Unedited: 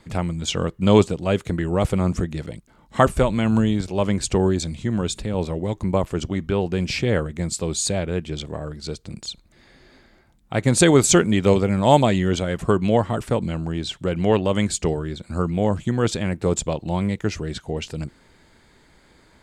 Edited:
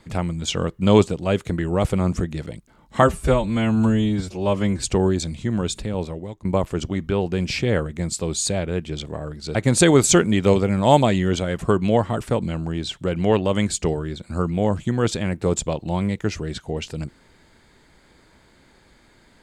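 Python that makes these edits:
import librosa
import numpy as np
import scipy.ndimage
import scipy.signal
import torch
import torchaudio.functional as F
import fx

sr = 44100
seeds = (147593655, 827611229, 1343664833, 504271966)

y = fx.edit(x, sr, fx.stretch_span(start_s=3.02, length_s=1.2, factor=1.5),
    fx.fade_out_to(start_s=5.24, length_s=0.61, floor_db=-17.0),
    fx.cut(start_s=8.95, length_s=1.6), tone=tone)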